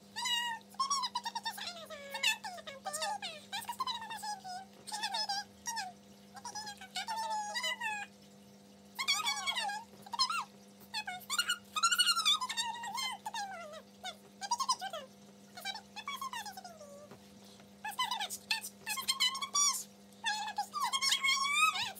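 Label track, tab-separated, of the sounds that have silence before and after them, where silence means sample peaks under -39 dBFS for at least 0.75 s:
8.990000	16.660000	sound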